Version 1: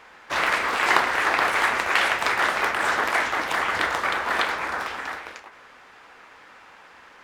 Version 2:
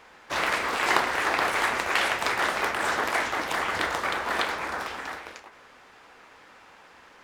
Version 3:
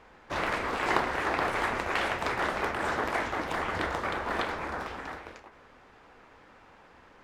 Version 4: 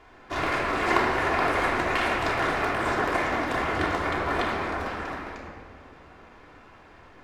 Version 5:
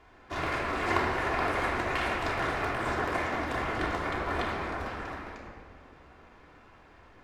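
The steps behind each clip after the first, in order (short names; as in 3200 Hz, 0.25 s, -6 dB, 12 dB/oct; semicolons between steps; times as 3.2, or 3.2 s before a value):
bell 1600 Hz -4.5 dB 2.2 oct
tilt -2.5 dB/oct; gain -3.5 dB
shoebox room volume 3900 m³, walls mixed, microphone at 3.2 m
octaver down 2 oct, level -3 dB; gain -5 dB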